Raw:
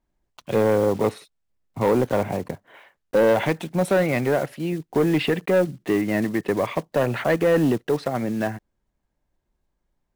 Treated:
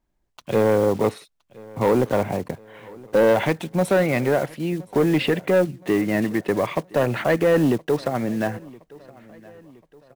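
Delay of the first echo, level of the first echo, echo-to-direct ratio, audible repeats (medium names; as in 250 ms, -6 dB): 1019 ms, -23.0 dB, -22.0 dB, 2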